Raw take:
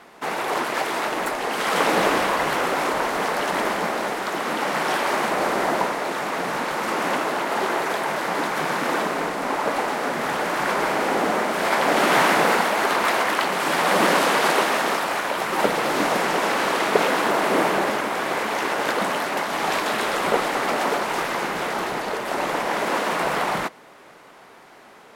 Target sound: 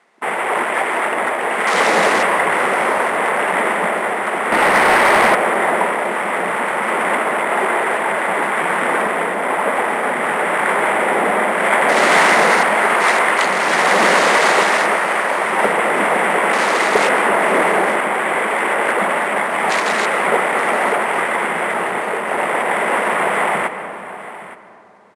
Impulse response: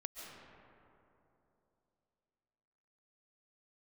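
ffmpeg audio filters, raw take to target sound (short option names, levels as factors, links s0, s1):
-filter_complex "[0:a]afwtdn=0.0282,acrusher=samples=4:mix=1:aa=0.000001,acontrast=75,highpass=140,equalizer=f=140:t=q:w=4:g=-10,equalizer=f=290:t=q:w=4:g=-8,equalizer=f=2000:t=q:w=4:g=6,lowpass=f=9300:w=0.5412,lowpass=f=9300:w=1.3066,asoftclip=type=hard:threshold=0.75,aecho=1:1:870:0.158,asplit=2[s0][s1];[1:a]atrim=start_sample=2205,lowshelf=f=110:g=9.5[s2];[s1][s2]afir=irnorm=-1:irlink=0,volume=0.75[s3];[s0][s3]amix=inputs=2:normalize=0,asettb=1/sr,asplit=3[s4][s5][s6];[s4]atrim=end=4.524[s7];[s5]atrim=start=4.52:end=5.35,asetpts=PTS-STARTPTS,afade=t=in:d=0.004:c=qsin,afade=t=out:st=0.826:d=0.004:c=qsin,acontrast=84[s8];[s6]atrim=start=5.346[s9];[s7][s8]acrossfade=d=0.004:c1=hsin:c2=qsin[s10];[s10][s9]acrossfade=d=0.004:c1=qsin:c2=hsin,volume=0.631"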